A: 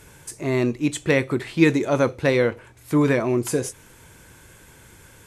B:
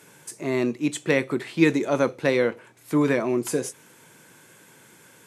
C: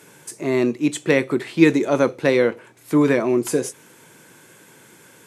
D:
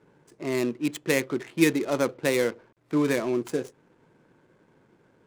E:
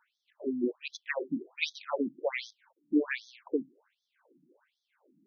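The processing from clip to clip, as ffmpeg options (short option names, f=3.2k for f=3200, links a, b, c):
-af "highpass=f=150:w=0.5412,highpass=f=150:w=1.3066,volume=-2dB"
-af "equalizer=f=360:w=1.5:g=2.5,volume=3dB"
-af "acrusher=bits=7:mix=0:aa=0.000001,adynamicsmooth=sensitivity=3.5:basefreq=790,crystalizer=i=2.5:c=0,volume=-7.5dB"
-af "afftfilt=real='re*between(b*sr/1024,220*pow(4700/220,0.5+0.5*sin(2*PI*1.3*pts/sr))/1.41,220*pow(4700/220,0.5+0.5*sin(2*PI*1.3*pts/sr))*1.41)':imag='im*between(b*sr/1024,220*pow(4700/220,0.5+0.5*sin(2*PI*1.3*pts/sr))/1.41,220*pow(4700/220,0.5+0.5*sin(2*PI*1.3*pts/sr))*1.41)':win_size=1024:overlap=0.75"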